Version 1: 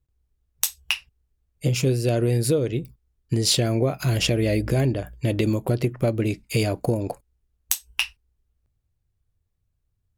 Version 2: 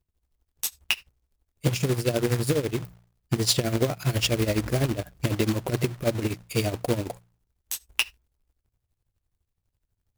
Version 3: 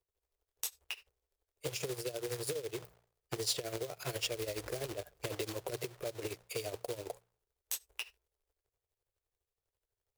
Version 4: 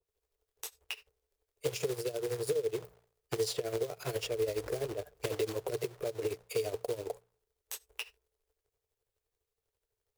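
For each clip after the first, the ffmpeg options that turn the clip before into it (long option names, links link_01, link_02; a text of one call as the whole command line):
ffmpeg -i in.wav -af "tremolo=f=12:d=0.81,bandreject=frequency=58.58:width_type=h:width=4,bandreject=frequency=117.16:width_type=h:width=4,bandreject=frequency=175.74:width_type=h:width=4,acrusher=bits=2:mode=log:mix=0:aa=0.000001" out.wav
ffmpeg -i in.wav -filter_complex "[0:a]lowshelf=frequency=320:width_type=q:width=3:gain=-10.5,alimiter=limit=-15dB:level=0:latency=1:release=179,acrossover=split=170|3000[link_01][link_02][link_03];[link_02]acompressor=threshold=-31dB:ratio=6[link_04];[link_01][link_04][link_03]amix=inputs=3:normalize=0,volume=-6dB" out.wav
ffmpeg -i in.wav -filter_complex "[0:a]equalizer=frequency=440:width=7.1:gain=8.5,acrossover=split=2300[link_01][link_02];[link_02]alimiter=level_in=3dB:limit=-24dB:level=0:latency=1:release=275,volume=-3dB[link_03];[link_01][link_03]amix=inputs=2:normalize=0,adynamicequalizer=threshold=0.002:dfrequency=1500:dqfactor=0.7:tfrequency=1500:tqfactor=0.7:attack=5:release=100:ratio=0.375:range=2:mode=cutabove:tftype=highshelf,volume=2dB" out.wav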